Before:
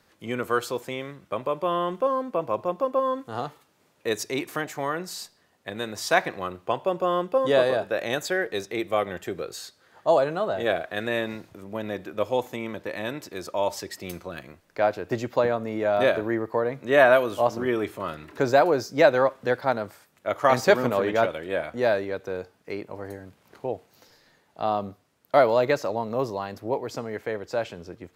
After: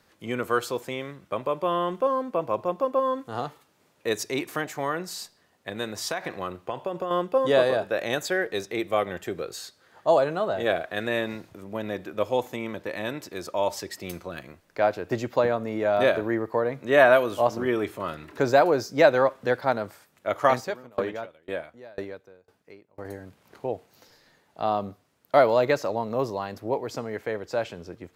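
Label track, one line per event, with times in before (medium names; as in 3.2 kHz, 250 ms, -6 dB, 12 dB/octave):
5.990000	7.110000	compression 12:1, threshold -24 dBFS
20.480000	23.050000	sawtooth tremolo in dB decaying 2 Hz, depth 30 dB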